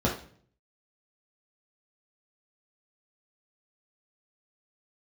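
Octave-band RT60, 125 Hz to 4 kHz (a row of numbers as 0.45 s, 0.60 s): 0.80 s, 0.65 s, 0.55 s, 0.45 s, 0.45 s, 0.45 s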